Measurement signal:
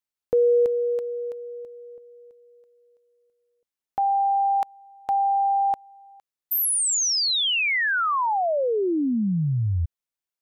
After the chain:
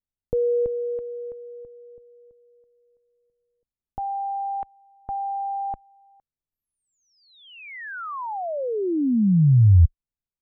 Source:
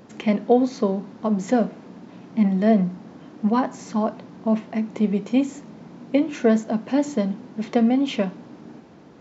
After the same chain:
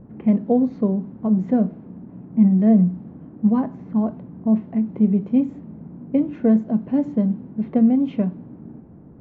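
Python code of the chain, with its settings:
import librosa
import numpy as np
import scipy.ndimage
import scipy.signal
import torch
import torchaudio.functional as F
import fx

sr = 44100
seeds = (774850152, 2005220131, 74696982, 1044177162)

y = fx.tilt_eq(x, sr, slope=-4.0)
y = fx.env_lowpass(y, sr, base_hz=1600.0, full_db=-8.0)
y = fx.bass_treble(y, sr, bass_db=5, treble_db=-9)
y = y * 10.0 ** (-8.0 / 20.0)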